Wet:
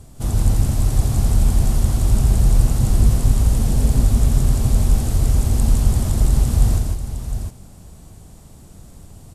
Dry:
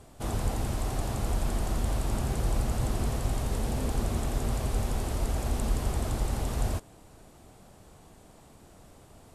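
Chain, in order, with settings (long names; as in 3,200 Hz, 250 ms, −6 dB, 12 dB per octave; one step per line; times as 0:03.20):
bass and treble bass +13 dB, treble +9 dB
on a send: multi-tap delay 155/708 ms −3.5/−8 dB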